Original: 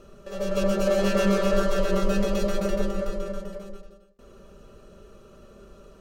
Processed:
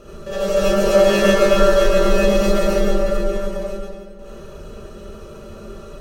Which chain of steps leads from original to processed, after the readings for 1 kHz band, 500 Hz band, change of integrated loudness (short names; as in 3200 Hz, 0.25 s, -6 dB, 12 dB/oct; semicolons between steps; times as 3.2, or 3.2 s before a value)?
+9.0 dB, +10.0 dB, +8.5 dB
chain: darkening echo 0.317 s, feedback 58%, low-pass 4200 Hz, level -18.5 dB; non-linear reverb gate 0.11 s rising, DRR -6.5 dB; in parallel at -2.5 dB: compressor, threshold -29 dBFS, peak gain reduction 18 dB; on the sum: gain +1 dB